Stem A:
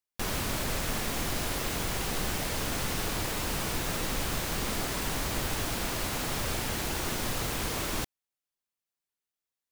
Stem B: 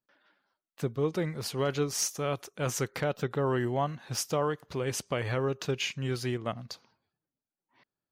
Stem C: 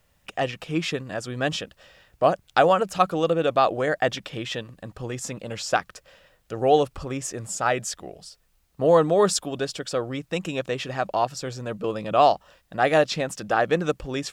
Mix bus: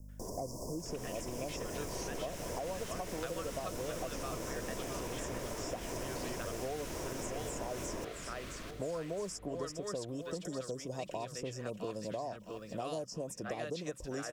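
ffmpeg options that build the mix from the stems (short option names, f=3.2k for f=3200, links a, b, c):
-filter_complex "[0:a]aemphasis=mode=reproduction:type=50kf,dynaudnorm=f=200:g=13:m=10dB,aeval=exprs='val(0)+0.00562*(sin(2*PI*50*n/s)+sin(2*PI*2*50*n/s)/2+sin(2*PI*3*50*n/s)/3+sin(2*PI*4*50*n/s)/4+sin(2*PI*5*50*n/s)/5)':c=same,volume=-3dB,asplit=2[a][b];[b]volume=-17.5dB[c];[1:a]volume=-6dB[d];[2:a]volume=0dB,asplit=3[e][f][g];[f]volume=-16.5dB[h];[g]apad=whole_len=357877[i];[d][i]sidechaincompress=threshold=-41dB:ratio=8:attack=16:release=160[j];[a][e]amix=inputs=2:normalize=0,asuperstop=centerf=2300:order=20:qfactor=0.56,acompressor=threshold=-25dB:ratio=6,volume=0dB[k];[c][h]amix=inputs=2:normalize=0,aecho=0:1:662|1324|1986|2648|3310:1|0.38|0.144|0.0549|0.0209[l];[j][k][l]amix=inputs=3:normalize=0,equalizer=f=830:t=o:w=0.3:g=-14,acrossover=split=310|990|3300[m][n][o][p];[m]acompressor=threshold=-46dB:ratio=4[q];[n]acompressor=threshold=-42dB:ratio=4[r];[o]acompressor=threshold=-45dB:ratio=4[s];[p]acompressor=threshold=-48dB:ratio=4[t];[q][r][s][t]amix=inputs=4:normalize=0"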